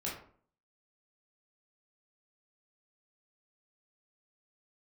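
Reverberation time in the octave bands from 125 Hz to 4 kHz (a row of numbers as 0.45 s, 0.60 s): 0.60 s, 0.60 s, 0.55 s, 0.50 s, 0.40 s, 0.30 s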